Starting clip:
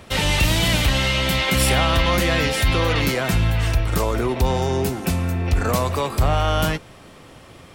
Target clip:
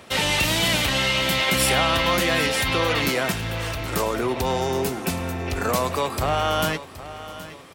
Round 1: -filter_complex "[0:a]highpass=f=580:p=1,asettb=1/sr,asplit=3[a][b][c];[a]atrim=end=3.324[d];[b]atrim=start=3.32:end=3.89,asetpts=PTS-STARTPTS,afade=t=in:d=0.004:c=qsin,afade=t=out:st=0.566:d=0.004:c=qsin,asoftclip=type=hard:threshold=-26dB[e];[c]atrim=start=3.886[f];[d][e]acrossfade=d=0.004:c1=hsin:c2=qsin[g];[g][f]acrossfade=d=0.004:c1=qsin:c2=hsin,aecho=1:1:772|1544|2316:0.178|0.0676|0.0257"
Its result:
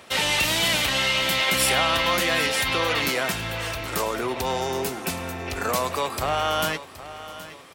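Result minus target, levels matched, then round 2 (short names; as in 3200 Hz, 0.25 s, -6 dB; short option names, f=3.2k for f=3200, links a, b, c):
250 Hz band -4.0 dB
-filter_complex "[0:a]highpass=f=250:p=1,asettb=1/sr,asplit=3[a][b][c];[a]atrim=end=3.324[d];[b]atrim=start=3.32:end=3.89,asetpts=PTS-STARTPTS,afade=t=in:d=0.004:c=qsin,afade=t=out:st=0.566:d=0.004:c=qsin,asoftclip=type=hard:threshold=-26dB[e];[c]atrim=start=3.886[f];[d][e]acrossfade=d=0.004:c1=hsin:c2=qsin[g];[g][f]acrossfade=d=0.004:c1=qsin:c2=hsin,aecho=1:1:772|1544|2316:0.178|0.0676|0.0257"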